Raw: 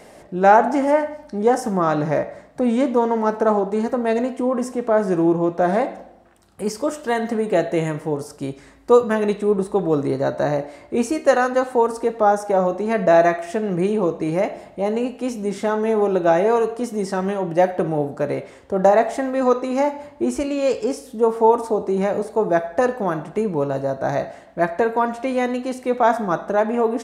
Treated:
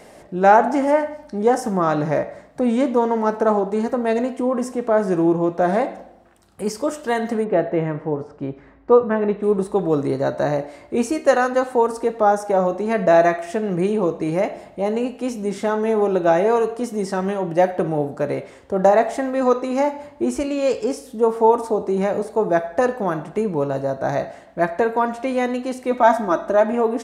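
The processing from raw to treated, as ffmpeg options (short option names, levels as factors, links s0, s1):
-filter_complex "[0:a]asplit=3[s0][s1][s2];[s0]afade=t=out:st=7.43:d=0.02[s3];[s1]lowpass=1800,afade=t=in:st=7.43:d=0.02,afade=t=out:st=9.42:d=0.02[s4];[s2]afade=t=in:st=9.42:d=0.02[s5];[s3][s4][s5]amix=inputs=3:normalize=0,asettb=1/sr,asplit=3[s6][s7][s8];[s6]atrim=end=25.914[s9];[s7]atrim=start=25.91:end=26.73,asetpts=PTS-STARTPTS,afade=t=in:d=0.004:c=qsin,afade=t=out:st=0.816:d=0.004:c=qsin,aecho=1:1:3.2:0.65,atrim=end_sample=36162[s10];[s8]atrim=start=26.726[s11];[s9][s10]acrossfade=d=0.004:c1=hsin:c2=qsin[s12];[s12][s11]acrossfade=d=0.004:c1=qsin:c2=hsin"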